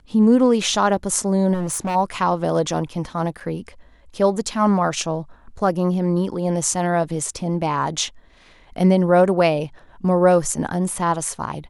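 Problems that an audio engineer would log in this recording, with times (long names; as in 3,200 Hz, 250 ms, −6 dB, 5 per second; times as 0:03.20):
0:01.53–0:01.96: clipping −20 dBFS
0:03.40–0:03.41: drop-out 5.2 ms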